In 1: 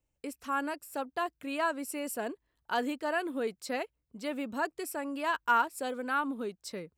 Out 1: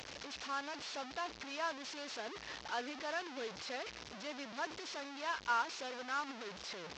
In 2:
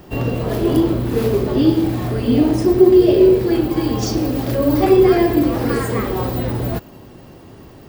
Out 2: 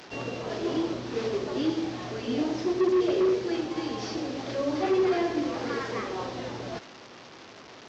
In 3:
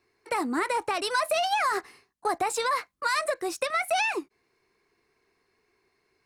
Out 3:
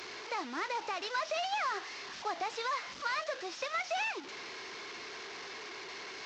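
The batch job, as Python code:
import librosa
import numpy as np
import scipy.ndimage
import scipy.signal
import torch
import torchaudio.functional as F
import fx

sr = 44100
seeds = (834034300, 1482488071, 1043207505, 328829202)

y = fx.delta_mod(x, sr, bps=32000, step_db=-30.0)
y = fx.highpass(y, sr, hz=560.0, slope=6)
y = F.gain(torch.from_numpy(y), -7.0).numpy()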